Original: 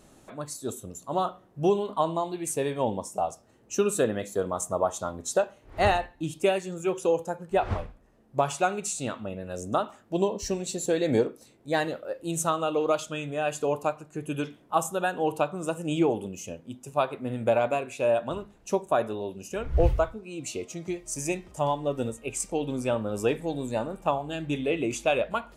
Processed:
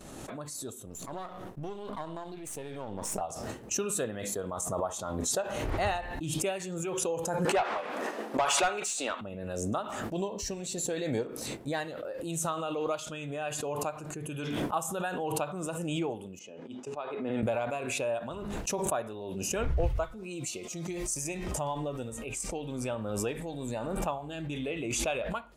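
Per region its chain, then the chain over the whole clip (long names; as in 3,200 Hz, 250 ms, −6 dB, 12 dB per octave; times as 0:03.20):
0:00.86–0:03.21: gain on one half-wave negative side −7 dB + downward compressor 1.5 to 1, threshold −36 dBFS
0:07.45–0:09.21: high-pass filter 240 Hz 24 dB per octave + mid-hump overdrive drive 18 dB, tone 3,800 Hz, clips at −10.5 dBFS
0:16.39–0:17.43: high-pass filter 260 Hz + high-frequency loss of the air 140 metres + tuned comb filter 420 Hz, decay 0.15 s
0:20.03–0:21.24: high-shelf EQ 3,500 Hz +6.5 dB + comb filter 5.6 ms, depth 41%
whole clip: downward expander −47 dBFS; dynamic equaliser 320 Hz, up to −4 dB, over −33 dBFS, Q 0.79; background raised ahead of every attack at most 25 dB per second; level −6.5 dB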